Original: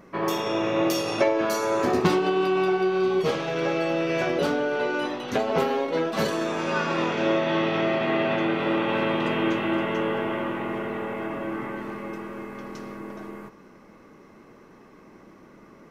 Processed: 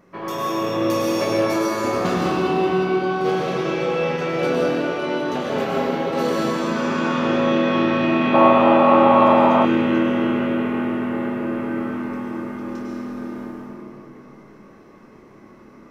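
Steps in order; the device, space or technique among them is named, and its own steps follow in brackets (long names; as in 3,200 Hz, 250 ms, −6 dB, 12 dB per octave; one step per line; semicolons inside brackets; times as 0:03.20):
tunnel (flutter between parallel walls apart 4.8 metres, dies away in 0.21 s; convolution reverb RT60 3.4 s, pre-delay 93 ms, DRR −5.5 dB)
0:08.34–0:09.65: flat-topped bell 820 Hz +14.5 dB 1.3 octaves
level −4.5 dB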